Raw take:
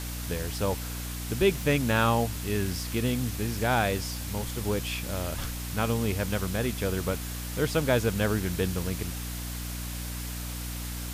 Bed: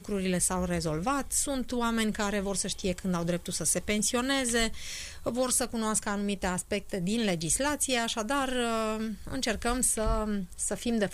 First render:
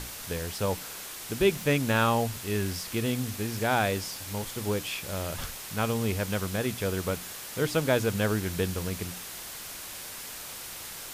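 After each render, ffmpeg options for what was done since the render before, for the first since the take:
-af "bandreject=f=60:t=h:w=6,bandreject=f=120:t=h:w=6,bandreject=f=180:t=h:w=6,bandreject=f=240:t=h:w=6,bandreject=f=300:t=h:w=6"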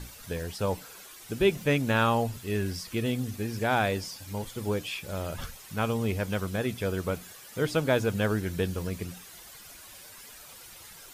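-af "afftdn=nr=11:nf=-41"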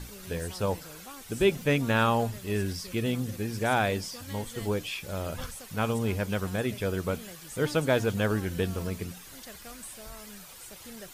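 -filter_complex "[1:a]volume=-18dB[a];[0:a][a]amix=inputs=2:normalize=0"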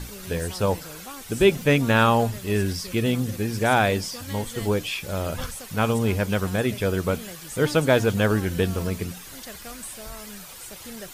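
-af "volume=6dB"

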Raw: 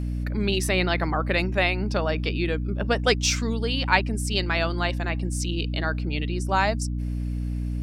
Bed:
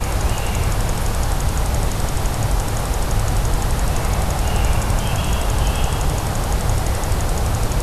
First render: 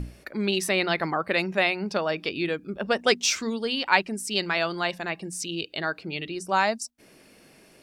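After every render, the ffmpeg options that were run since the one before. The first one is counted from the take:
-af "bandreject=f=60:t=h:w=6,bandreject=f=120:t=h:w=6,bandreject=f=180:t=h:w=6,bandreject=f=240:t=h:w=6,bandreject=f=300:t=h:w=6"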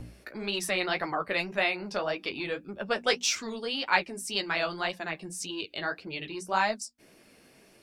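-filter_complex "[0:a]flanger=delay=8.7:depth=7.9:regen=-26:speed=1.8:shape=sinusoidal,acrossover=split=420|2600[a][b][c];[a]asoftclip=type=tanh:threshold=-37.5dB[d];[d][b][c]amix=inputs=3:normalize=0"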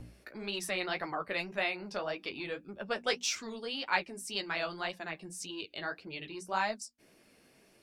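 -af "volume=-5.5dB"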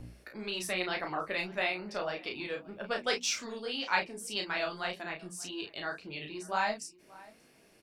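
-filter_complex "[0:a]asplit=2[a][b];[b]adelay=33,volume=-5dB[c];[a][c]amix=inputs=2:normalize=0,asplit=2[d][e];[e]adelay=583.1,volume=-21dB,highshelf=f=4k:g=-13.1[f];[d][f]amix=inputs=2:normalize=0"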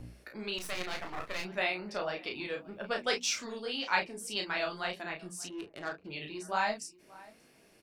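-filter_complex "[0:a]asettb=1/sr,asplit=3[a][b][c];[a]atrim=end=0.584[d];[b]atrim=start=0.58:end=1.45,asetpts=PTS-STARTPTS,afade=t=in:d=0.004:c=qsin,afade=t=out:st=0.866:d=0.004:c=qsin,aeval=exprs='max(val(0),0)':c=same[e];[c]atrim=start=1.446[f];[d][e]acrossfade=d=0.004:c1=hsin:c2=qsin[g];[g][f]acrossfade=d=0.004:c1=qsin:c2=hsin,asplit=3[h][i][j];[h]afade=t=out:st=5.48:d=0.02[k];[i]adynamicsmooth=sensitivity=4.5:basefreq=660,afade=t=in:st=5.48:d=0.02,afade=t=out:st=6.04:d=0.02[l];[j]afade=t=in:st=6.04:d=0.02[m];[k][l][m]amix=inputs=3:normalize=0"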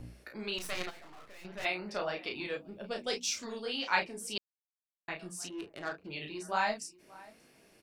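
-filter_complex "[0:a]asplit=3[a][b][c];[a]afade=t=out:st=0.89:d=0.02[d];[b]aeval=exprs='(tanh(79.4*val(0)+0.65)-tanh(0.65))/79.4':c=same,afade=t=in:st=0.89:d=0.02,afade=t=out:st=1.64:d=0.02[e];[c]afade=t=in:st=1.64:d=0.02[f];[d][e][f]amix=inputs=3:normalize=0,asettb=1/sr,asplit=3[g][h][i];[g]atrim=end=2.574[j];[h]atrim=start=2.57:end=3.43,asetpts=PTS-STARTPTS,afade=t=in:d=0.004:c=qsin,afade=t=out:st=0.856:d=0.004:c=qsin,equalizer=f=1.4k:w=0.73:g=-10.5[k];[i]atrim=start=3.426[l];[j][k]acrossfade=d=0.004:c1=hsin:c2=qsin[m];[m][l]acrossfade=d=0.004:c1=qsin:c2=hsin,asplit=3[n][o][p];[n]atrim=end=4.38,asetpts=PTS-STARTPTS,afade=t=out:st=4.376:d=0.004:c=hsin[q];[o]atrim=start=4.38:end=5.08,asetpts=PTS-STARTPTS,volume=0[r];[p]atrim=start=5.08,asetpts=PTS-STARTPTS,afade=t=in:d=0.004:c=hsin[s];[q][r][s]concat=n=3:v=0:a=1"

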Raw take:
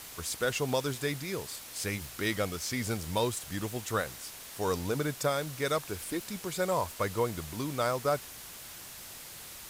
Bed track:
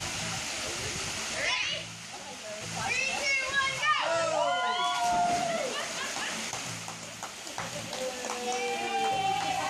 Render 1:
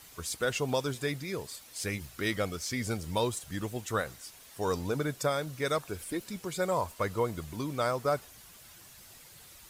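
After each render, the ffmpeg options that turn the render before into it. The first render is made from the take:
-af "afftdn=nr=9:nf=-46"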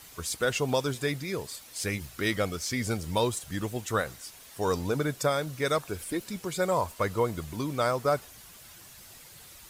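-af "volume=3dB"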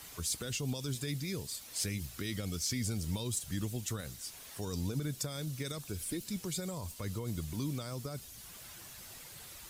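-filter_complex "[0:a]alimiter=limit=-22.5dB:level=0:latency=1:release=43,acrossover=split=280|3000[a][b][c];[b]acompressor=threshold=-52dB:ratio=3[d];[a][d][c]amix=inputs=3:normalize=0"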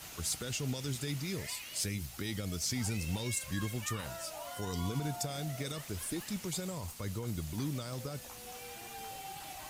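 -filter_complex "[1:a]volume=-17.5dB[a];[0:a][a]amix=inputs=2:normalize=0"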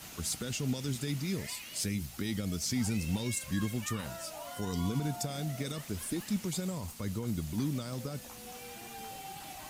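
-af "equalizer=f=220:w=1.6:g=7"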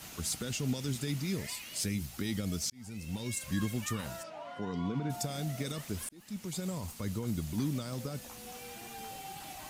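-filter_complex "[0:a]asplit=3[a][b][c];[a]afade=t=out:st=4.22:d=0.02[d];[b]highpass=140,lowpass=2.5k,afade=t=in:st=4.22:d=0.02,afade=t=out:st=5.09:d=0.02[e];[c]afade=t=in:st=5.09:d=0.02[f];[d][e][f]amix=inputs=3:normalize=0,asplit=3[g][h][i];[g]atrim=end=2.7,asetpts=PTS-STARTPTS,afade=t=out:st=2.696:d=0.004:c=hsin[j];[h]atrim=start=2.7:end=6.09,asetpts=PTS-STARTPTS,afade=t=in:d=0.81,afade=t=out:st=3.386:d=0.004:c=hsin[k];[i]atrim=start=6.09,asetpts=PTS-STARTPTS,afade=t=in:d=0.64[l];[j][k][l]concat=n=3:v=0:a=1"

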